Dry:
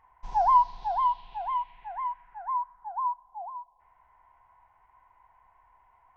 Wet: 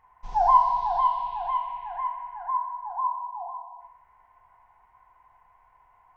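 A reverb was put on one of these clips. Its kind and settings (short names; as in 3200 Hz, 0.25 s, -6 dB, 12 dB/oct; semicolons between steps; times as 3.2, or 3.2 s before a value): non-linear reverb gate 0.47 s falling, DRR 1.5 dB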